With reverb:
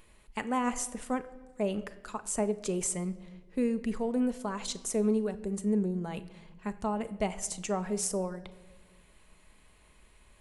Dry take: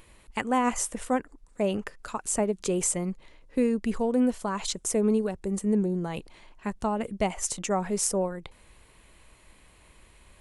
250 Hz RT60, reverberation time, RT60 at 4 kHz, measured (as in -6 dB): 2.1 s, 1.3 s, 1.0 s